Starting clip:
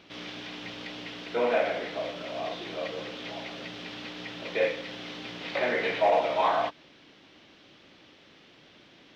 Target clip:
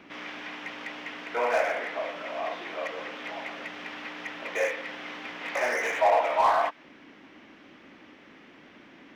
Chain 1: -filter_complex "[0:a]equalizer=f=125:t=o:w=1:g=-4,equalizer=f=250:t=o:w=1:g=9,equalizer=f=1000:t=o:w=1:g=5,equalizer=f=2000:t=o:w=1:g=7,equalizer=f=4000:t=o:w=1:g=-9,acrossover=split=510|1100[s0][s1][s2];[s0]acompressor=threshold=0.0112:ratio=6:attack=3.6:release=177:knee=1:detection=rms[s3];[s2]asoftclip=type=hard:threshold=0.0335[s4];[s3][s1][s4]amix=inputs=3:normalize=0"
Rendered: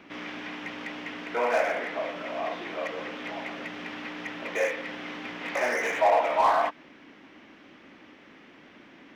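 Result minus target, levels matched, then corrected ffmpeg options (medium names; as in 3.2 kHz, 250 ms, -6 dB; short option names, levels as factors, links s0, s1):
compression: peak gain reduction -7 dB
-filter_complex "[0:a]equalizer=f=125:t=o:w=1:g=-4,equalizer=f=250:t=o:w=1:g=9,equalizer=f=1000:t=o:w=1:g=5,equalizer=f=2000:t=o:w=1:g=7,equalizer=f=4000:t=o:w=1:g=-9,acrossover=split=510|1100[s0][s1][s2];[s0]acompressor=threshold=0.00422:ratio=6:attack=3.6:release=177:knee=1:detection=rms[s3];[s2]asoftclip=type=hard:threshold=0.0335[s4];[s3][s1][s4]amix=inputs=3:normalize=0"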